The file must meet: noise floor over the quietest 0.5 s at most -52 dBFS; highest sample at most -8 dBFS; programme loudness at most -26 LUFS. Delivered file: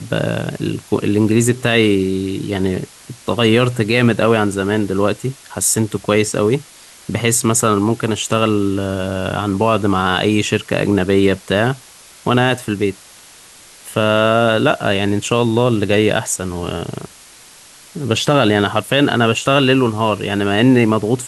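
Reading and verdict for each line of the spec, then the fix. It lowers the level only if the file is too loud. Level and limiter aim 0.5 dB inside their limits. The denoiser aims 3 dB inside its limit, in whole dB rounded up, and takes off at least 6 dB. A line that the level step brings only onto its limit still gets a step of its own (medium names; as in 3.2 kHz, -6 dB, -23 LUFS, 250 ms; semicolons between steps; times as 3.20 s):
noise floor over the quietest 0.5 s -42 dBFS: fail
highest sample -1.5 dBFS: fail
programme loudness -16.0 LUFS: fail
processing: trim -10.5 dB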